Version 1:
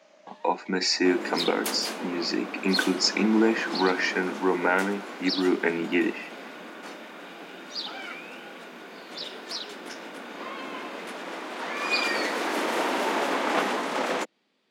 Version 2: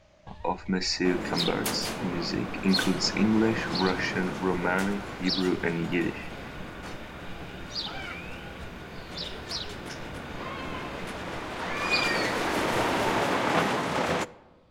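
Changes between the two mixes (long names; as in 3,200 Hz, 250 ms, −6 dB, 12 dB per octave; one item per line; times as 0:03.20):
speech −4.0 dB
first sound: send on
master: remove Butterworth high-pass 220 Hz 36 dB per octave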